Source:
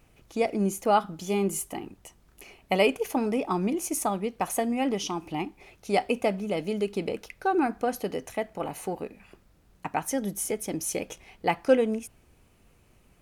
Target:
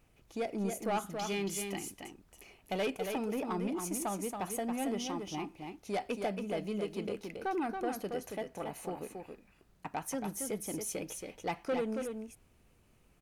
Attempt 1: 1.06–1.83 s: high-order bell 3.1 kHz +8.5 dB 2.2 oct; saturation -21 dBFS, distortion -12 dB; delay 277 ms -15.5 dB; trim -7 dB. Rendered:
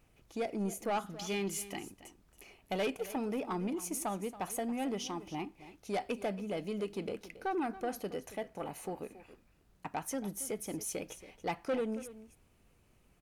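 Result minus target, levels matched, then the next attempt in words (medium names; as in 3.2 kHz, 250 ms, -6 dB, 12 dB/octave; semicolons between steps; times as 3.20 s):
echo-to-direct -10 dB
1.06–1.83 s: high-order bell 3.1 kHz +8.5 dB 2.2 oct; saturation -21 dBFS, distortion -12 dB; delay 277 ms -5.5 dB; trim -7 dB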